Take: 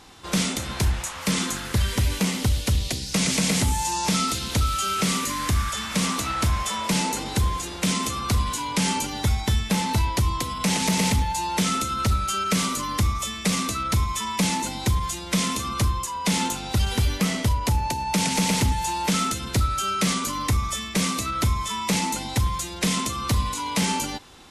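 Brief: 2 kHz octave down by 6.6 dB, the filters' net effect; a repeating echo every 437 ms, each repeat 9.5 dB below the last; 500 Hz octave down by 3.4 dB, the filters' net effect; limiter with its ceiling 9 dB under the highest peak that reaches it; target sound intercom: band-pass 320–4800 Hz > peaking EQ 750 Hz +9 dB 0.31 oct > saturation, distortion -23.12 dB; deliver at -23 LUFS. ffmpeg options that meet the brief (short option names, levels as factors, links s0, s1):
-af "equalizer=f=500:t=o:g=-4.5,equalizer=f=2000:t=o:g=-8,alimiter=limit=0.0841:level=0:latency=1,highpass=320,lowpass=4800,equalizer=f=750:t=o:w=0.31:g=9,aecho=1:1:437|874|1311|1748:0.335|0.111|0.0365|0.012,asoftclip=threshold=0.0708,volume=3.16"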